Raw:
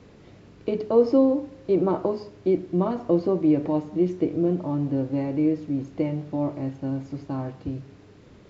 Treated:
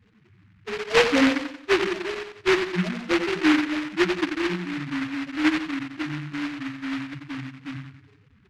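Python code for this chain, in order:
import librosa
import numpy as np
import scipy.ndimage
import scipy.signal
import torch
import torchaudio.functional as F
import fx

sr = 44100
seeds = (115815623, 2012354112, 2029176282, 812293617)

p1 = fx.level_steps(x, sr, step_db=20)
p2 = x + (p1 * 10.0 ** (2.0 / 20.0))
p3 = fx.spec_topn(p2, sr, count=2)
p4 = fx.echo_feedback(p3, sr, ms=89, feedback_pct=43, wet_db=-8)
p5 = fx.noise_mod_delay(p4, sr, seeds[0], noise_hz=1700.0, depth_ms=0.25)
y = p5 * 10.0 ** (-3.5 / 20.0)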